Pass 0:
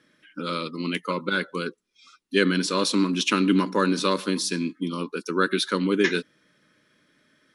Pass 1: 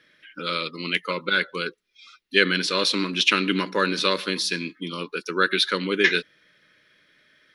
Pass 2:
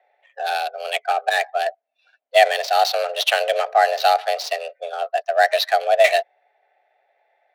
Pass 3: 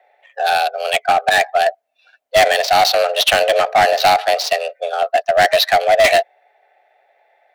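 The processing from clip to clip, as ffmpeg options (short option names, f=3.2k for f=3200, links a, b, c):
-af "equalizer=f=125:t=o:w=1:g=-4,equalizer=f=250:t=o:w=1:g=-10,equalizer=f=1k:t=o:w=1:g=-6,equalizer=f=2k:t=o:w=1:g=5,equalizer=f=4k:t=o:w=1:g=4,equalizer=f=8k:t=o:w=1:g=-10,volume=3.5dB"
-af "afreqshift=250,adynamicsmooth=sensitivity=3.5:basefreq=1.3k,highpass=f=700:t=q:w=5.2,volume=-1.5dB"
-af "asoftclip=type=hard:threshold=-15.5dB,volume=7.5dB"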